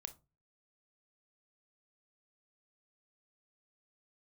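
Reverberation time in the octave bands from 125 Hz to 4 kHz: 0.50 s, 0.40 s, 0.30 s, 0.25 s, 0.20 s, 0.15 s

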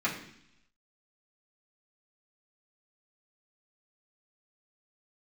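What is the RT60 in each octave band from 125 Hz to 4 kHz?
0.95 s, 0.90 s, 0.70 s, 0.70 s, 0.90 s, 1.0 s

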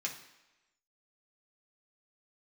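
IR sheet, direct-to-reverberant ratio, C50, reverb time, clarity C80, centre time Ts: -2.0 dB, 9.0 dB, 1.0 s, 12.0 dB, 20 ms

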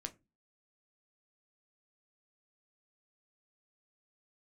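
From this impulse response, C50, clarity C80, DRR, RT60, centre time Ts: 20.5 dB, 27.5 dB, 6.5 dB, no single decay rate, 6 ms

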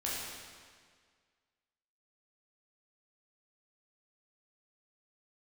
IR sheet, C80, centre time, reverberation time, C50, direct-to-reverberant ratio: 0.5 dB, 118 ms, 1.8 s, -1.5 dB, -7.0 dB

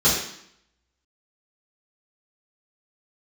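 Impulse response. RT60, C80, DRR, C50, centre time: 0.70 s, 5.5 dB, -10.5 dB, 2.5 dB, 49 ms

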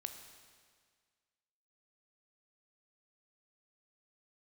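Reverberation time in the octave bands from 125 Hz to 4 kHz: 1.8 s, 1.8 s, 1.8 s, 1.8 s, 1.8 s, 1.7 s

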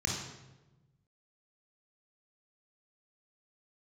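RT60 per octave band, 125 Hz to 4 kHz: 1.8 s, 1.5 s, 1.2 s, 0.95 s, 0.85 s, 0.75 s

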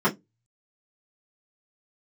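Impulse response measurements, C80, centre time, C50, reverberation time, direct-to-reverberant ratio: 32.0 dB, 12 ms, 19.0 dB, 0.15 s, -10.5 dB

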